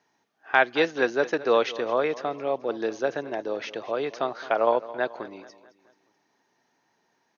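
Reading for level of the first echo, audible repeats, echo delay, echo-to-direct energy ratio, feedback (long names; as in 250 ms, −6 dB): −17.0 dB, 3, 216 ms, −16.0 dB, 48%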